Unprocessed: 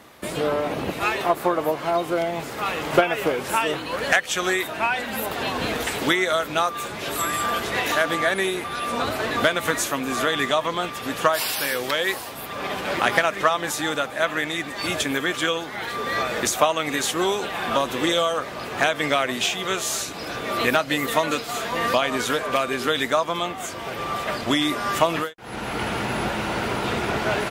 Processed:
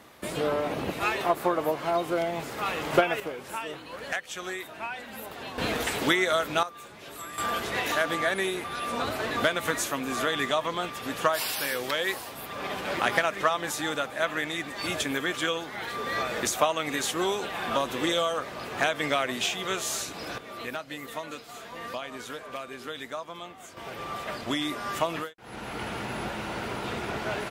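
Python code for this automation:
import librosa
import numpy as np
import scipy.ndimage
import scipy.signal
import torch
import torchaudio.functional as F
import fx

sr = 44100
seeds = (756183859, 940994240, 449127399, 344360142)

y = fx.gain(x, sr, db=fx.steps((0.0, -4.0), (3.2, -12.5), (5.58, -3.0), (6.63, -15.0), (7.38, -5.0), (20.38, -15.0), (23.77, -8.0)))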